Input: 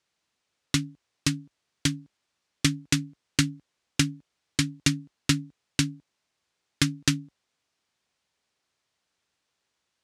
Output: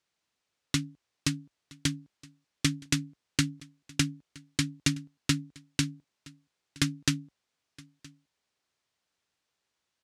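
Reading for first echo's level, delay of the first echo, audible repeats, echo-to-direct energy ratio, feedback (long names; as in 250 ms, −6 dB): −23.5 dB, 969 ms, 1, −23.5 dB, repeats not evenly spaced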